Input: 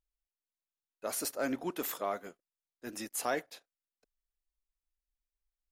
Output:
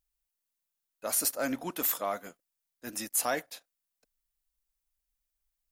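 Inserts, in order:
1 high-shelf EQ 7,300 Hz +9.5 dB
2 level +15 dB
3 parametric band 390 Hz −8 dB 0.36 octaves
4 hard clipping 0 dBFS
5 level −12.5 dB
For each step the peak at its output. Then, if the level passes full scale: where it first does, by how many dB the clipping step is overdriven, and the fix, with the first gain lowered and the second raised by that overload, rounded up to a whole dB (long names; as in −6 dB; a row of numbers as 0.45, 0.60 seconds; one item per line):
−17.0, −2.0, −2.0, −2.0, −14.5 dBFS
no step passes full scale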